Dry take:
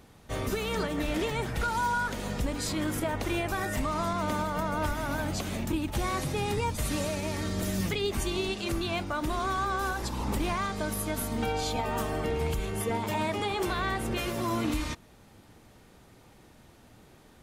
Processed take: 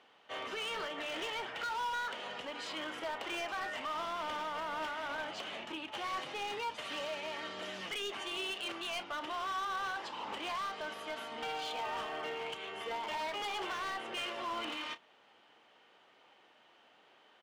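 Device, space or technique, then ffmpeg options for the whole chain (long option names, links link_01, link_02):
megaphone: -filter_complex "[0:a]highpass=640,lowpass=3100,equalizer=frequency=3000:width_type=o:width=0.21:gain=11.5,asoftclip=type=hard:threshold=-32dB,asplit=2[link_01][link_02];[link_02]adelay=32,volume=-14dB[link_03];[link_01][link_03]amix=inputs=2:normalize=0,volume=-2.5dB"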